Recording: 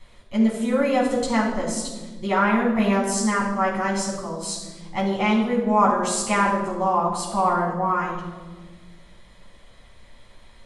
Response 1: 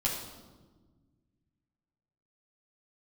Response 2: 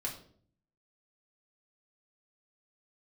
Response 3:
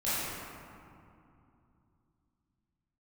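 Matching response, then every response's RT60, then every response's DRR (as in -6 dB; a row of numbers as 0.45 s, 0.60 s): 1; 1.4 s, 0.55 s, 2.6 s; -5.0 dB, -2.5 dB, -13.5 dB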